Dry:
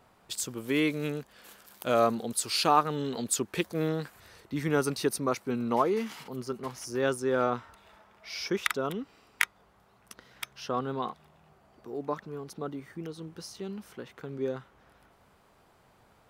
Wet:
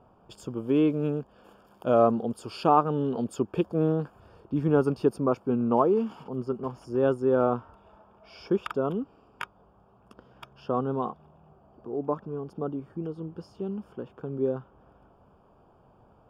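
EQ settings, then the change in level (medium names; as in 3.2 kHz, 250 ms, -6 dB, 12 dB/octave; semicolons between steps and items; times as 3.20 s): boxcar filter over 22 samples; +5.5 dB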